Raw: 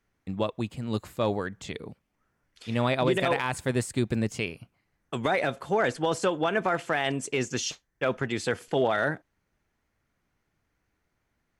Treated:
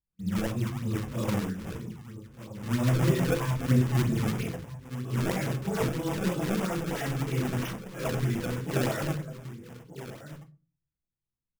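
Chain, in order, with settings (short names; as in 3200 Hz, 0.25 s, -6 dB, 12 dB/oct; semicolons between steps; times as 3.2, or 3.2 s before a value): phase scrambler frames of 0.2 s; gate with hold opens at -50 dBFS; tone controls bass +13 dB, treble +4 dB; outdoor echo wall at 210 m, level -13 dB; decimation with a swept rate 26×, swing 160% 3.1 Hz; bell 210 Hz +2.5 dB 0.33 oct; reverb RT60 0.35 s, pre-delay 6 ms, DRR 7 dB; LFO notch square 9.7 Hz 730–4200 Hz; gain -7 dB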